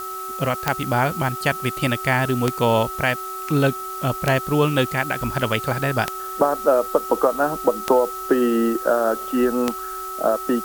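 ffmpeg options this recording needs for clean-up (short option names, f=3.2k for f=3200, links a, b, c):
-af "adeclick=t=4,bandreject=f=377.8:t=h:w=4,bandreject=f=755.6:t=h:w=4,bandreject=f=1.1334k:t=h:w=4,bandreject=f=1.5112k:t=h:w=4,bandreject=f=1.889k:t=h:w=4,bandreject=f=1.3k:w=30,afftdn=nr=30:nf=-31"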